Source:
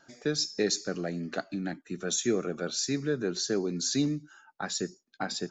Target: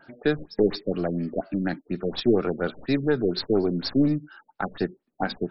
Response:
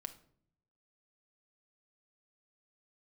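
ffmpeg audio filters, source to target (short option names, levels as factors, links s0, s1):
-af "aeval=exprs='0.168*(cos(1*acos(clip(val(0)/0.168,-1,1)))-cos(1*PI/2))+0.0106*(cos(2*acos(clip(val(0)/0.168,-1,1)))-cos(2*PI/2))+0.0168*(cos(4*acos(clip(val(0)/0.168,-1,1)))-cos(4*PI/2))':c=same,afftfilt=real='re*lt(b*sr/1024,600*pow(5600/600,0.5+0.5*sin(2*PI*4.2*pts/sr)))':imag='im*lt(b*sr/1024,600*pow(5600/600,0.5+0.5*sin(2*PI*4.2*pts/sr)))':win_size=1024:overlap=0.75,volume=2.24"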